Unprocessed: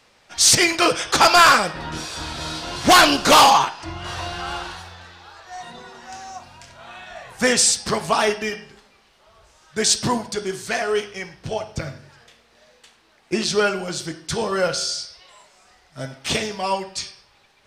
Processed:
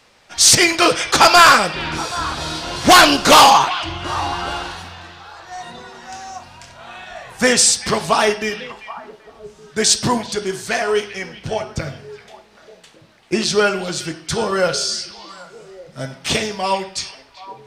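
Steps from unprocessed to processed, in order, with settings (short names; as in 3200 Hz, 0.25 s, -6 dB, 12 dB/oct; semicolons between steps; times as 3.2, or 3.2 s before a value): delay with a stepping band-pass 0.389 s, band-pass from 2700 Hz, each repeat -1.4 oct, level -11.5 dB; gain +3.5 dB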